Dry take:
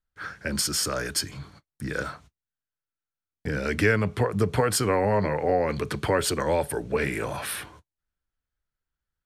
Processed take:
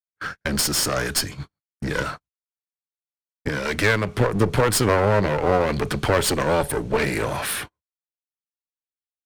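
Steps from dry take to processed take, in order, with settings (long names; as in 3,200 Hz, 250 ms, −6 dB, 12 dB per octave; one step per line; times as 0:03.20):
noise gate −37 dBFS, range −44 dB
0:03.49–0:04.15: low-shelf EQ 440 Hz −7 dB
asymmetric clip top −34.5 dBFS
level +7.5 dB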